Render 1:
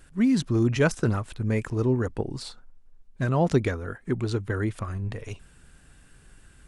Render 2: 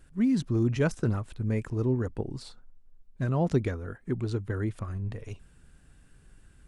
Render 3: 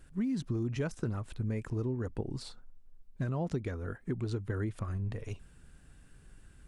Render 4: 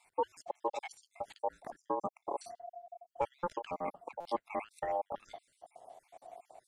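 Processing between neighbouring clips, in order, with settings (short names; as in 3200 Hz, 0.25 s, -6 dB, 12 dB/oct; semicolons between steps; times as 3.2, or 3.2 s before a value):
low shelf 500 Hz +6 dB; gain -8 dB
compressor 6:1, threshold -30 dBFS, peak gain reduction 11 dB
random spectral dropouts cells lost 66%; ring modulator 700 Hz; stuck buffer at 4.2, samples 256, times 8; gain +4.5 dB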